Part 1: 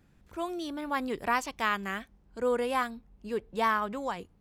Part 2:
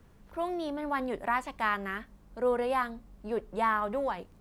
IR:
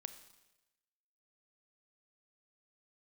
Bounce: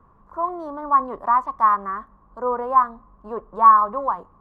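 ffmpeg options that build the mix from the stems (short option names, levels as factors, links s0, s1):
-filter_complex "[0:a]acompressor=threshold=0.02:ratio=12,asoftclip=type=tanh:threshold=0.0447,volume=0.158[s0];[1:a]lowpass=f=1100:t=q:w=9.5,volume=-1,volume=0.944,asplit=2[s1][s2];[s2]volume=0.141[s3];[2:a]atrim=start_sample=2205[s4];[s3][s4]afir=irnorm=-1:irlink=0[s5];[s0][s1][s5]amix=inputs=3:normalize=0"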